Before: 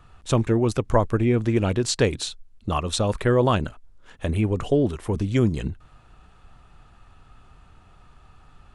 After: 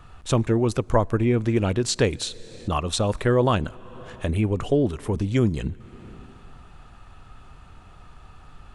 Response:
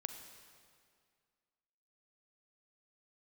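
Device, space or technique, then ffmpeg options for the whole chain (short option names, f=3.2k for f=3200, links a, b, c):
ducked reverb: -filter_complex "[0:a]asplit=3[a][b][c];[1:a]atrim=start_sample=2205[d];[b][d]afir=irnorm=-1:irlink=0[e];[c]apad=whole_len=385529[f];[e][f]sidechaincompress=threshold=-40dB:ratio=6:attack=10:release=290,volume=1.5dB[g];[a][g]amix=inputs=2:normalize=0,volume=-1dB"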